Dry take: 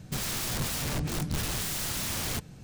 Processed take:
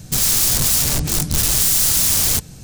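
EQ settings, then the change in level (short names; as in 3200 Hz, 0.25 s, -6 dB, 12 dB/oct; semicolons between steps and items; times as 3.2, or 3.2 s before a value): tone controls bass -3 dB, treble +13 dB; low shelf 120 Hz +10 dB; +6.5 dB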